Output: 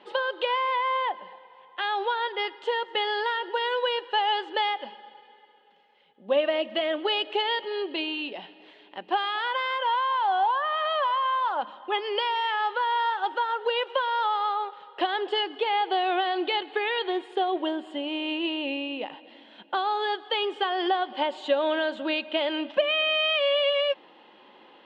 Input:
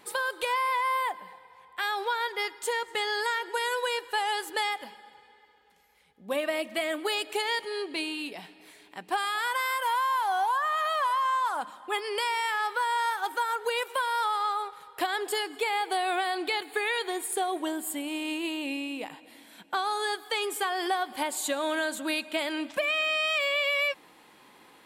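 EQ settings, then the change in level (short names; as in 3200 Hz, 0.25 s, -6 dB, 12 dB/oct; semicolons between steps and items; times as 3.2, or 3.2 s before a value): speaker cabinet 200–3800 Hz, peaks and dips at 220 Hz +5 dB, 360 Hz +6 dB, 560 Hz +9 dB, 850 Hz +5 dB, 3000 Hz +9 dB; notch 2300 Hz, Q 12; -1.0 dB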